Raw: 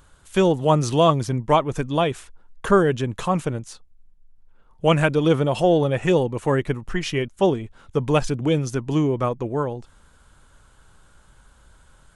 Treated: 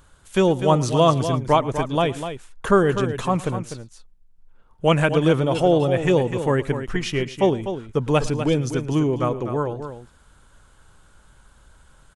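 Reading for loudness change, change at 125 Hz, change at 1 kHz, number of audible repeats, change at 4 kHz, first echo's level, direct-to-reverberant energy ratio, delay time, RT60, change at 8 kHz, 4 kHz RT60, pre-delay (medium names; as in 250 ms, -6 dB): +0.5 dB, +0.5 dB, +0.5 dB, 2, +0.5 dB, -20.0 dB, no reverb, 110 ms, no reverb, +0.5 dB, no reverb, no reverb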